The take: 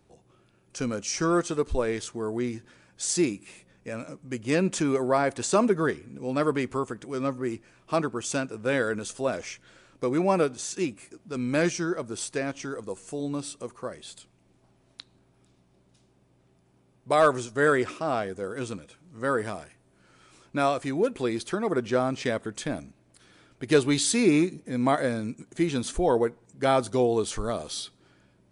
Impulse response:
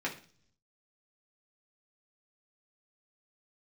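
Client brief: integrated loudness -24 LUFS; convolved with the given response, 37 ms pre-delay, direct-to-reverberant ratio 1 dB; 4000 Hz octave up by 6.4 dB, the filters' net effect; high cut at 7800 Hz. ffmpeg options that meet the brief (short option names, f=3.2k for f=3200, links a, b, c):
-filter_complex "[0:a]lowpass=7.8k,equalizer=f=4k:t=o:g=8,asplit=2[a][b];[1:a]atrim=start_sample=2205,adelay=37[c];[b][c]afir=irnorm=-1:irlink=0,volume=-6.5dB[d];[a][d]amix=inputs=2:normalize=0,volume=0.5dB"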